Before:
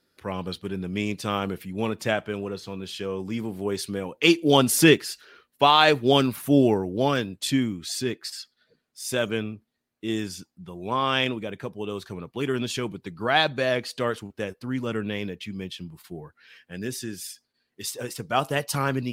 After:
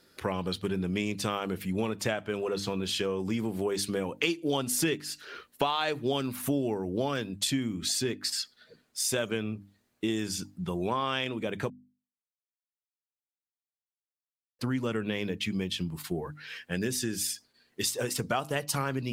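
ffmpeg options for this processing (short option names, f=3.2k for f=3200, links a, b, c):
-filter_complex "[0:a]asplit=3[a][b][c];[a]atrim=end=11.7,asetpts=PTS-STARTPTS,afade=t=out:st=11.696:d=0.004:c=hsin[d];[b]atrim=start=11.7:end=14.59,asetpts=PTS-STARTPTS,volume=0[e];[c]atrim=start=14.59,asetpts=PTS-STARTPTS,afade=t=in:d=0.004:c=hsin[f];[d][e][f]concat=n=3:v=0:a=1,equalizer=f=7.4k:w=2.2:g=2.5,bandreject=f=50:t=h:w=6,bandreject=f=100:t=h:w=6,bandreject=f=150:t=h:w=6,bandreject=f=200:t=h:w=6,bandreject=f=250:t=h:w=6,bandreject=f=300:t=h:w=6,acompressor=threshold=-36dB:ratio=6,volume=8.5dB"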